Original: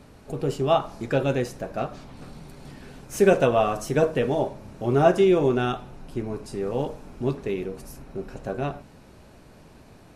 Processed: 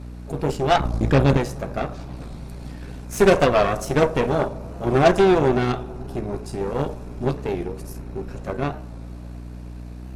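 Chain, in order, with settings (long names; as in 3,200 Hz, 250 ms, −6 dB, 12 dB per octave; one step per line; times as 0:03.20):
mains hum 60 Hz, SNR 12 dB
0:00.80–0:01.37: low-shelf EQ 210 Hz +11.5 dB
harmonic generator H 8 −17 dB, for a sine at −5.5 dBFS
notch filter 3,000 Hz, Q 25
bucket-brigade delay 105 ms, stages 1,024, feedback 83%, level −23 dB
wow of a warped record 45 rpm, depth 100 cents
level +2 dB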